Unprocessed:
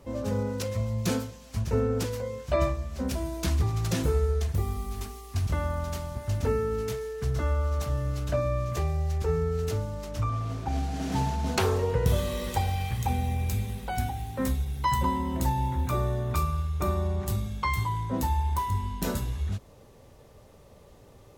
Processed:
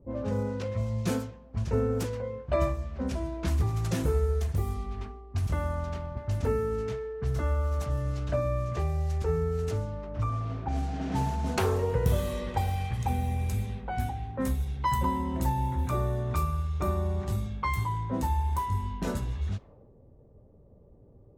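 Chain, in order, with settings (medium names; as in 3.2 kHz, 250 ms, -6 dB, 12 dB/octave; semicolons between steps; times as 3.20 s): level-controlled noise filter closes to 350 Hz, open at -23.5 dBFS; dynamic bell 4.3 kHz, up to -5 dB, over -50 dBFS, Q 0.79; trim -1 dB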